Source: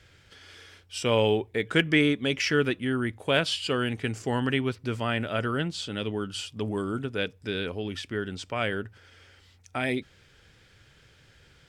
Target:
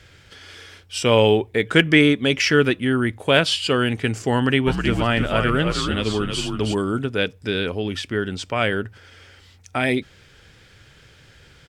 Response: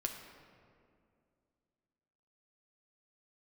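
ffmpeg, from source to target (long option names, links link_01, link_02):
-filter_complex "[0:a]asplit=3[link_01][link_02][link_03];[link_01]afade=type=out:start_time=4.66:duration=0.02[link_04];[link_02]asplit=5[link_05][link_06][link_07][link_08][link_09];[link_06]adelay=317,afreqshift=-76,volume=-5dB[link_10];[link_07]adelay=634,afreqshift=-152,volume=-14.4dB[link_11];[link_08]adelay=951,afreqshift=-228,volume=-23.7dB[link_12];[link_09]adelay=1268,afreqshift=-304,volume=-33.1dB[link_13];[link_05][link_10][link_11][link_12][link_13]amix=inputs=5:normalize=0,afade=type=in:start_time=4.66:duration=0.02,afade=type=out:start_time=6.73:duration=0.02[link_14];[link_03]afade=type=in:start_time=6.73:duration=0.02[link_15];[link_04][link_14][link_15]amix=inputs=3:normalize=0,volume=7.5dB"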